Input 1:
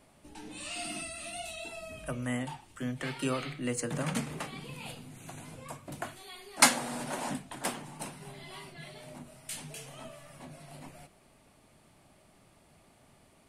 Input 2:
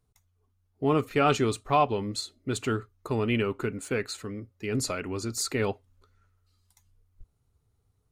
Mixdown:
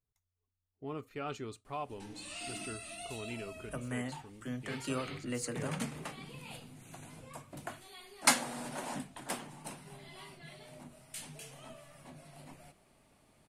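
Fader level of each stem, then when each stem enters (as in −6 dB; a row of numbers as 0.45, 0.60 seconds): −4.5, −17.0 decibels; 1.65, 0.00 seconds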